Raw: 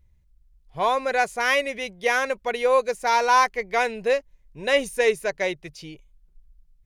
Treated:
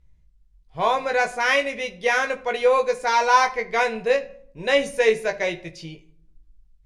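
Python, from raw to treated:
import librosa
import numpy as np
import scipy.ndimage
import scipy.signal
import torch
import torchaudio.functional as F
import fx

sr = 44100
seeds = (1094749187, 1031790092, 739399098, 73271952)

y = scipy.signal.sosfilt(scipy.signal.butter(2, 8300.0, 'lowpass', fs=sr, output='sos'), x)
y = fx.doubler(y, sr, ms=18.0, db=-5.0)
y = fx.room_shoebox(y, sr, seeds[0], volume_m3=990.0, walls='furnished', distance_m=0.64)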